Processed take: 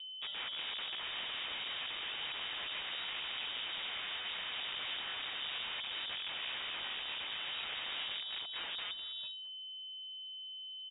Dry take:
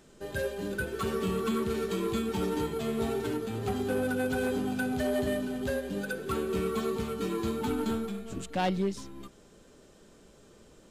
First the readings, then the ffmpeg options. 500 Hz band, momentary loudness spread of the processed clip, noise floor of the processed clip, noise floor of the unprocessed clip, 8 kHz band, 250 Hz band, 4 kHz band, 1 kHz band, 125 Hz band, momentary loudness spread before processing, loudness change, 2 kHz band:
-26.5 dB, 6 LU, -47 dBFS, -57 dBFS, under -35 dB, -32.5 dB, +9.5 dB, -11.0 dB, -29.5 dB, 5 LU, -7.0 dB, -2.5 dB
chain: -filter_complex "[0:a]agate=range=0.0708:threshold=0.00501:ratio=16:detection=peak,equalizer=f=1500:t=o:w=0.37:g=-11.5,bandreject=f=60:t=h:w=6,bandreject=f=120:t=h:w=6,bandreject=f=180:t=h:w=6,bandreject=f=240:t=h:w=6,bandreject=f=300:t=h:w=6,acompressor=threshold=0.0224:ratio=3,aresample=16000,aeval=exprs='(mod(50.1*val(0)+1,2)-1)/50.1':c=same,aresample=44100,aeval=exprs='val(0)+0.00891*sin(2*PI*750*n/s)':c=same,acrossover=split=580|1500[s0][s1][s2];[s0]acrusher=bits=6:mode=log:mix=0:aa=0.000001[s3];[s2]aecho=1:1:218:0.224[s4];[s3][s1][s4]amix=inputs=3:normalize=0,lowpass=f=3200:t=q:w=0.5098,lowpass=f=3200:t=q:w=0.6013,lowpass=f=3200:t=q:w=0.9,lowpass=f=3200:t=q:w=2.563,afreqshift=-3800,volume=0.75"

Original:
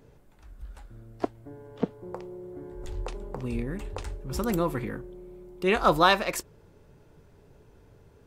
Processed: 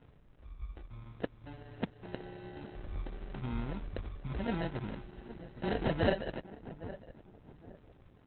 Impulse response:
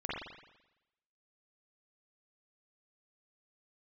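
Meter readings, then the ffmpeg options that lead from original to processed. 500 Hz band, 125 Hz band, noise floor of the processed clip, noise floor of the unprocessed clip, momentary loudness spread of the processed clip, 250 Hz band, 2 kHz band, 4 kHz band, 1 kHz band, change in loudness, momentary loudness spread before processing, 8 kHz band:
-8.5 dB, -3.0 dB, -61 dBFS, -57 dBFS, 22 LU, -6.5 dB, -11.5 dB, -13.0 dB, -15.0 dB, -10.5 dB, 24 LU, under -35 dB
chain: -filter_complex "[0:a]aecho=1:1:1.2:0.43,acompressor=threshold=0.0158:ratio=1.5,acrusher=samples=38:mix=1:aa=0.000001,asplit=2[s0][s1];[s1]adelay=812,lowpass=f=1100:p=1,volume=0.237,asplit=2[s2][s3];[s3]adelay=812,lowpass=f=1100:p=1,volume=0.37,asplit=2[s4][s5];[s5]adelay=812,lowpass=f=1100:p=1,volume=0.37,asplit=2[s6][s7];[s7]adelay=812,lowpass=f=1100:p=1,volume=0.37[s8];[s2][s4][s6][s8]amix=inputs=4:normalize=0[s9];[s0][s9]amix=inputs=2:normalize=0,volume=0.75" -ar 48000 -c:a libopus -b:a 8k

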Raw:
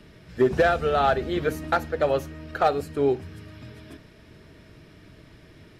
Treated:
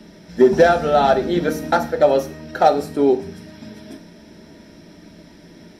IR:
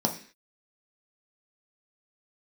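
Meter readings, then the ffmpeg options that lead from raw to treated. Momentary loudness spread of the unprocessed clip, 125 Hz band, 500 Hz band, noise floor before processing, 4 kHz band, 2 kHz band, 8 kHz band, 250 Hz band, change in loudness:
22 LU, +2.5 dB, +7.5 dB, -52 dBFS, +5.5 dB, +3.5 dB, no reading, +8.5 dB, +7.0 dB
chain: -filter_complex "[0:a]asplit=2[s0][s1];[s1]highpass=f=40:p=1[s2];[1:a]atrim=start_sample=2205,highshelf=f=2300:g=10[s3];[s2][s3]afir=irnorm=-1:irlink=0,volume=0.376[s4];[s0][s4]amix=inputs=2:normalize=0,volume=0.891"

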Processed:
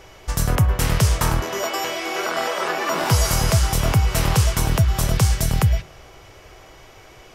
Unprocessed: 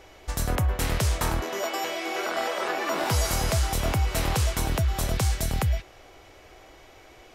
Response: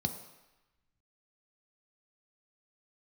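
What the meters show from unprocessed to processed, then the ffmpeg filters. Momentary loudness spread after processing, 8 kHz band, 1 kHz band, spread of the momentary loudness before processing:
6 LU, +6.5 dB, +5.0 dB, 4 LU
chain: -filter_complex "[0:a]asplit=2[s0][s1];[1:a]atrim=start_sample=2205,lowpass=6800[s2];[s1][s2]afir=irnorm=-1:irlink=0,volume=0.141[s3];[s0][s3]amix=inputs=2:normalize=0,volume=2"

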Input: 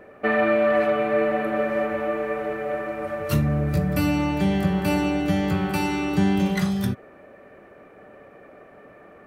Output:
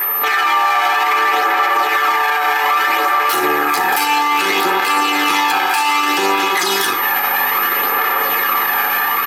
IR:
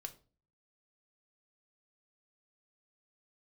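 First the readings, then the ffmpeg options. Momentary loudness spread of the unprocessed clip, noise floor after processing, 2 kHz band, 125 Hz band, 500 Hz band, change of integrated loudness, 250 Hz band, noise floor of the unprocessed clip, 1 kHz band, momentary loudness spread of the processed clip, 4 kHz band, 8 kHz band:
8 LU, -18 dBFS, +15.5 dB, under -15 dB, -0.5 dB, +9.0 dB, -4.5 dB, -49 dBFS, +17.5 dB, 1 LU, +18.5 dB, +18.0 dB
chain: -filter_complex "[0:a]aeval=exprs='max(val(0),0)':c=same,aphaser=in_gain=1:out_gain=1:delay=1.3:decay=0.38:speed=0.62:type=sinusoidal,asplit=2[s0][s1];[s1]aecho=0:1:11|58:0.355|0.188[s2];[s0][s2]amix=inputs=2:normalize=0,aeval=exprs='val(0)+0.0112*(sin(2*PI*50*n/s)+sin(2*PI*2*50*n/s)/2+sin(2*PI*3*50*n/s)/3+sin(2*PI*4*50*n/s)/4+sin(2*PI*5*50*n/s)/5)':c=same,highpass=f=270:w=0.5412,highpass=f=270:w=1.3066,lowshelf=f=710:t=q:w=1.5:g=-12.5,dynaudnorm=f=150:g=3:m=6.31,aeval=exprs='val(0)+0.00708*sin(2*PI*13000*n/s)':c=same,equalizer=f=8200:t=o:w=1.6:g=2,acompressor=threshold=0.0355:ratio=6,aecho=1:1:2.4:0.83,alimiter=level_in=21.1:limit=0.891:release=50:level=0:latency=1,volume=0.531"

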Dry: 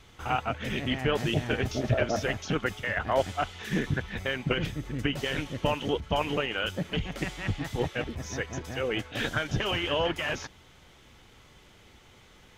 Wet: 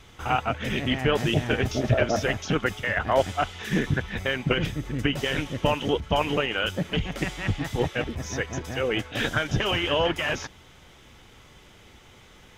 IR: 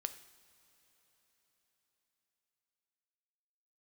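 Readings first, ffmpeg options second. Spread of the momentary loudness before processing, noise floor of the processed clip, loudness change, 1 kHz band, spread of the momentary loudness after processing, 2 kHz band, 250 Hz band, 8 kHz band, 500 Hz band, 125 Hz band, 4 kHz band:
6 LU, -52 dBFS, +4.0 dB, +4.0 dB, 6 LU, +4.0 dB, +4.0 dB, +4.0 dB, +4.0 dB, +4.0 dB, +4.0 dB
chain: -af "bandreject=f=4300:w=21,volume=1.58"

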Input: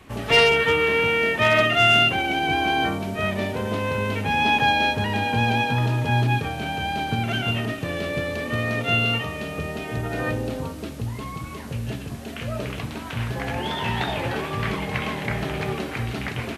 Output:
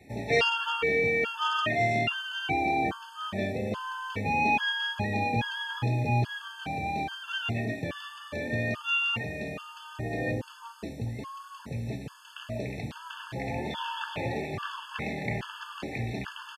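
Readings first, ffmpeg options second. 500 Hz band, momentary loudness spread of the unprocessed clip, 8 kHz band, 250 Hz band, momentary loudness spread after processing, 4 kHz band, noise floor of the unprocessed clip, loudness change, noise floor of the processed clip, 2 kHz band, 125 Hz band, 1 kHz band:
-7.5 dB, 14 LU, -9.5 dB, -7.0 dB, 14 LU, -8.5 dB, -35 dBFS, -7.5 dB, -48 dBFS, -7.5 dB, -7.5 dB, -6.5 dB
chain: -filter_complex "[0:a]acrossover=split=7800[s0][s1];[s1]acompressor=threshold=0.00126:ratio=4:attack=1:release=60[s2];[s0][s2]amix=inputs=2:normalize=0,highpass=73,aecho=1:1:559:0.0708,afftfilt=real='re*gt(sin(2*PI*1.2*pts/sr)*(1-2*mod(floor(b*sr/1024/880),2)),0)':imag='im*gt(sin(2*PI*1.2*pts/sr)*(1-2*mod(floor(b*sr/1024/880),2)),0)':win_size=1024:overlap=0.75,volume=0.631"

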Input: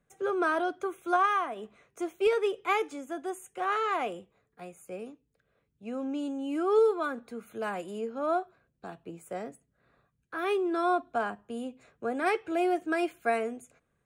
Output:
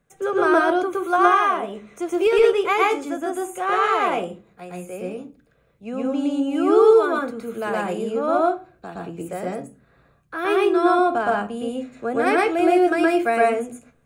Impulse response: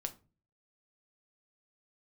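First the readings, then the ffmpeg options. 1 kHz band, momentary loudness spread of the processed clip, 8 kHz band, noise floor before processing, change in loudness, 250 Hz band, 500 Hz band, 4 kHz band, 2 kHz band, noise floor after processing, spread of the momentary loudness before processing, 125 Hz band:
+10.0 dB, 17 LU, no reading, -77 dBFS, +10.5 dB, +11.5 dB, +10.5 dB, +9.5 dB, +9.5 dB, -61 dBFS, 18 LU, +13.0 dB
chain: -filter_complex "[0:a]asplit=2[s0][s1];[1:a]atrim=start_sample=2205,lowshelf=f=170:g=7,adelay=117[s2];[s1][s2]afir=irnorm=-1:irlink=0,volume=1.33[s3];[s0][s3]amix=inputs=2:normalize=0,volume=2"

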